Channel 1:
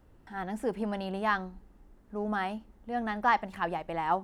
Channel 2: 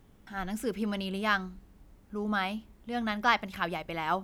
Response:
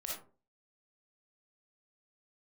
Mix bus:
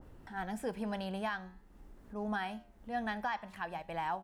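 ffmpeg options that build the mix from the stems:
-filter_complex "[0:a]acompressor=mode=upward:threshold=-40dB:ratio=2.5,adynamicequalizer=threshold=0.00891:dfrequency=1600:dqfactor=0.7:tfrequency=1600:tqfactor=0.7:attack=5:release=100:ratio=0.375:range=2.5:mode=boostabove:tftype=highshelf,volume=0dB,asplit=2[a][b];[1:a]adelay=0.8,volume=-8dB[c];[b]apad=whole_len=186824[d];[c][d]sidechaingate=range=-33dB:threshold=-38dB:ratio=16:detection=peak[e];[a][e]amix=inputs=2:normalize=0,flanger=delay=7.3:depth=3.1:regen=-89:speed=0.49:shape=triangular,alimiter=level_in=2.5dB:limit=-24dB:level=0:latency=1:release=438,volume=-2.5dB"

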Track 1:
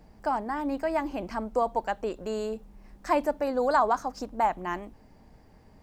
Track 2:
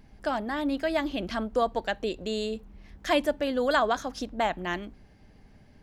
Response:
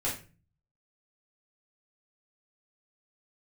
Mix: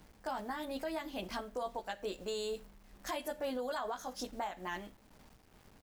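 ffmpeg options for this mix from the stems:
-filter_complex "[0:a]acrusher=bits=8:mix=0:aa=0.000001,tremolo=f=2.3:d=0.43,volume=-6dB,asplit=2[a][b];[1:a]aemphasis=mode=production:type=bsi,adelay=16,volume=-11dB,asplit=2[c][d];[d]volume=-17.5dB[e];[b]apad=whole_len=257514[f];[c][f]sidechaingate=range=-33dB:threshold=-52dB:ratio=16:detection=peak[g];[2:a]atrim=start_sample=2205[h];[e][h]afir=irnorm=-1:irlink=0[i];[a][g][i]amix=inputs=3:normalize=0,alimiter=level_in=5dB:limit=-24dB:level=0:latency=1:release=181,volume=-5dB"

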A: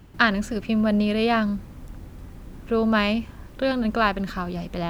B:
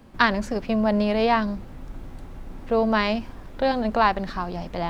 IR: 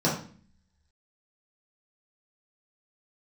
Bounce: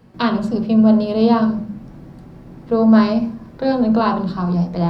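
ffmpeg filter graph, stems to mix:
-filter_complex "[0:a]lowpass=4.2k,agate=range=-7dB:threshold=-30dB:ratio=16:detection=peak,volume=-1dB,asplit=2[a][b];[b]volume=-16.5dB[c];[1:a]highpass=58,volume=-5dB,asplit=3[d][e][f];[e]volume=-15dB[g];[f]apad=whole_len=215905[h];[a][h]sidechaincompress=threshold=-28dB:ratio=8:attack=16:release=390[i];[2:a]atrim=start_sample=2205[j];[c][g]amix=inputs=2:normalize=0[k];[k][j]afir=irnorm=-1:irlink=0[l];[i][d][l]amix=inputs=3:normalize=0"

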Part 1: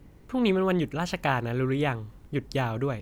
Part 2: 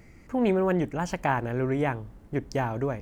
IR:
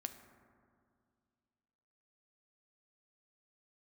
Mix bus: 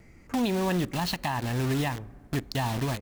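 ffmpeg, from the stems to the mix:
-filter_complex "[0:a]lowpass=f=4.3k:t=q:w=6,acrusher=bits=4:mix=0:aa=0.000001,volume=0.5dB,asplit=2[a][b];[b]volume=-17.5dB[c];[1:a]adelay=1.2,volume=-1.5dB,asplit=2[d][e];[e]apad=whole_len=132847[f];[a][f]sidechaincompress=threshold=-29dB:ratio=8:attack=8:release=976[g];[2:a]atrim=start_sample=2205[h];[c][h]afir=irnorm=-1:irlink=0[i];[g][d][i]amix=inputs=3:normalize=0,alimiter=limit=-18.5dB:level=0:latency=1:release=96"

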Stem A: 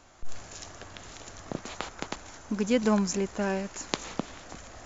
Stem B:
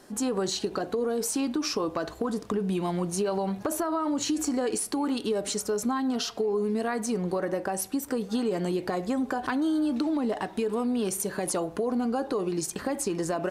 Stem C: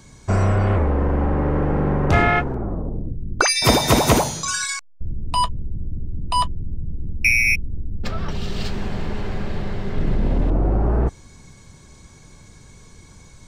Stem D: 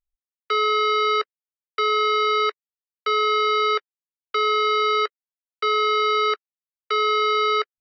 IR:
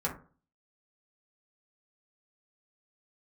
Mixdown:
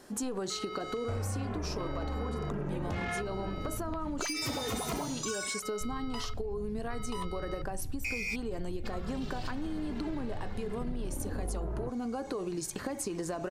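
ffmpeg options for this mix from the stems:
-filter_complex "[0:a]acrossover=split=3000[a][b];[b]acompressor=threshold=-57dB:ratio=4:attack=1:release=60[c];[a][c]amix=inputs=2:normalize=0,volume=-10dB[d];[1:a]volume=-1.5dB[e];[2:a]asoftclip=type=tanh:threshold=-15.5dB,asplit=2[f][g];[g]adelay=2.5,afreqshift=-1.2[h];[f][h]amix=inputs=2:normalize=1,adelay=800,volume=-1.5dB[i];[3:a]volume=-18.5dB[j];[d][e][i][j]amix=inputs=4:normalize=0,acompressor=threshold=-32dB:ratio=6"

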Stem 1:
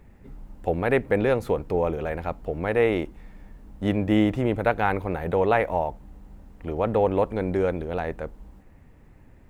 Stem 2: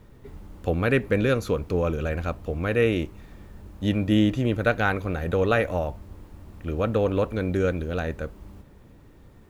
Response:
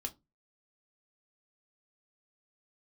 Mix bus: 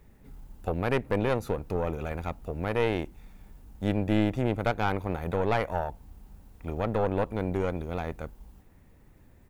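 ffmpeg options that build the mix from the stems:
-filter_complex "[0:a]volume=-1dB,asplit=2[a][b];[1:a]crystalizer=i=2.5:c=0,adelay=0.7,volume=-10dB[c];[b]apad=whole_len=418931[d];[c][d]sidechaincompress=threshold=-25dB:ratio=8:attack=16:release=348[e];[a][e]amix=inputs=2:normalize=0,aeval=exprs='(tanh(6.31*val(0)+0.75)-tanh(0.75))/6.31':c=same"

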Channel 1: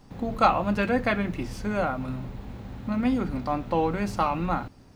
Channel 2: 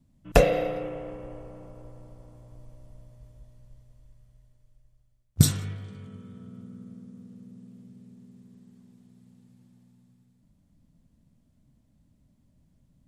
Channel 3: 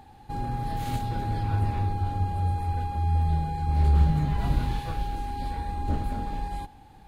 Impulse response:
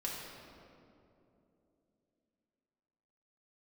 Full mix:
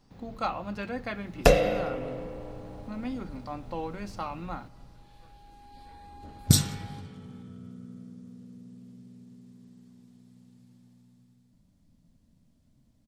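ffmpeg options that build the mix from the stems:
-filter_complex "[0:a]volume=-11dB,asplit=3[a][b][c];[b]volume=-23.5dB[d];[1:a]bandreject=f=50:t=h:w=6,bandreject=f=100:t=h:w=6,bandreject=f=150:t=h:w=6,bandreject=f=200:t=h:w=6,adelay=1100,volume=-1dB,asplit=2[e][f];[f]volume=-17.5dB[g];[2:a]lowshelf=f=130:g=-10,acompressor=threshold=-29dB:ratio=6,adelay=350,volume=-11.5dB[h];[c]apad=whole_len=327421[i];[h][i]sidechaincompress=threshold=-49dB:ratio=8:attack=37:release=1460[j];[3:a]atrim=start_sample=2205[k];[d][g]amix=inputs=2:normalize=0[l];[l][k]afir=irnorm=-1:irlink=0[m];[a][e][j][m]amix=inputs=4:normalize=0,equalizer=f=4.8k:t=o:w=0.93:g=5"

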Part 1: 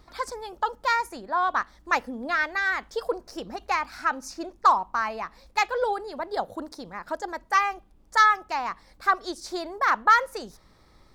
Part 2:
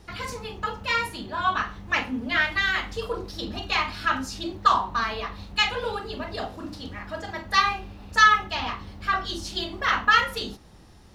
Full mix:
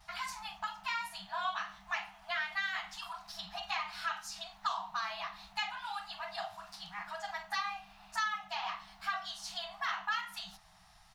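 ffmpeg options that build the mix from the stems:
-filter_complex "[0:a]acompressor=threshold=-32dB:ratio=6,volume=-9dB[a];[1:a]highpass=f=240:w=0.5412,highpass=f=240:w=1.3066,acrossover=split=630|2300[b][c][d];[b]acompressor=threshold=-37dB:ratio=4[e];[c]acompressor=threshold=-35dB:ratio=4[f];[d]acompressor=threshold=-38dB:ratio=4[g];[e][f][g]amix=inputs=3:normalize=0,adelay=4.5,volume=-4.5dB[h];[a][h]amix=inputs=2:normalize=0,afftfilt=real='re*(1-between(b*sr/4096,200,630))':imag='im*(1-between(b*sr/4096,200,630))':win_size=4096:overlap=0.75"

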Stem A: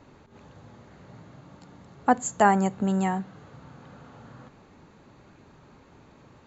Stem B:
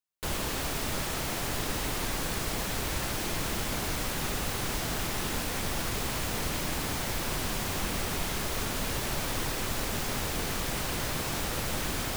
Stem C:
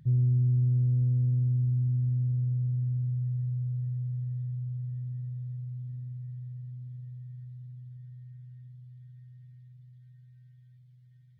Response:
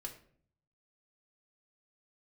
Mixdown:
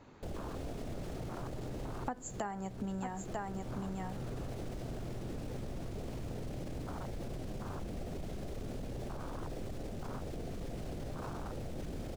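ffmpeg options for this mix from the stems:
-filter_complex "[0:a]volume=-5.5dB,asplit=3[a][b][c];[b]volume=-7.5dB[d];[c]volume=-7.5dB[e];[1:a]acrossover=split=9500[f][g];[g]acompressor=threshold=-46dB:ratio=4:attack=1:release=60[h];[f][h]amix=inputs=2:normalize=0,volume=-2dB[i];[2:a]asoftclip=type=hard:threshold=-34.5dB,adelay=1100,volume=-8.5dB[j];[i][j]amix=inputs=2:normalize=0,afwtdn=0.0224,alimiter=level_in=9dB:limit=-24dB:level=0:latency=1:release=17,volume=-9dB,volume=0dB[k];[3:a]atrim=start_sample=2205[l];[d][l]afir=irnorm=-1:irlink=0[m];[e]aecho=0:1:944:1[n];[a][k][m][n]amix=inputs=4:normalize=0,acompressor=threshold=-35dB:ratio=20"

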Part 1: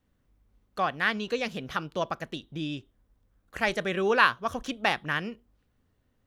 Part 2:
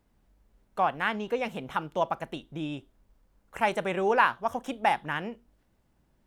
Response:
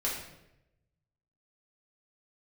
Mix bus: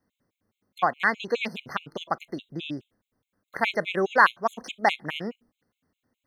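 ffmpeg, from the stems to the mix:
-filter_complex "[0:a]highpass=150,volume=1dB[a];[1:a]agate=range=-10dB:threshold=-56dB:ratio=16:detection=peak,lowshelf=f=190:g=-9.5,volume=-2dB[b];[a][b]amix=inputs=2:normalize=0,afftfilt=real='re*gt(sin(2*PI*4.8*pts/sr)*(1-2*mod(floor(b*sr/1024/2100),2)),0)':imag='im*gt(sin(2*PI*4.8*pts/sr)*(1-2*mod(floor(b*sr/1024/2100),2)),0)':win_size=1024:overlap=0.75"

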